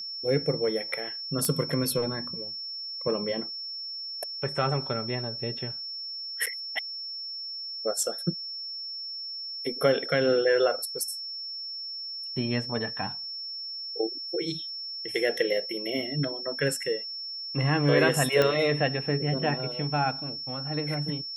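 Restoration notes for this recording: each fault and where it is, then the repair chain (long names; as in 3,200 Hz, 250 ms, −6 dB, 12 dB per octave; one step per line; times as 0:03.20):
whistle 5,400 Hz −34 dBFS
0:01.45: click −12 dBFS
0:06.46–0:06.47: drop-out 7.1 ms
0:18.42: click −10 dBFS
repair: click removal
notch filter 5,400 Hz, Q 30
repair the gap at 0:06.46, 7.1 ms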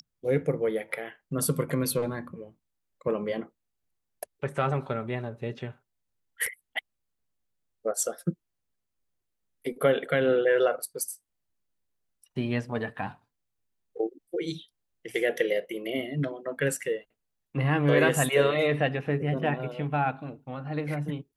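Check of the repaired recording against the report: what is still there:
none of them is left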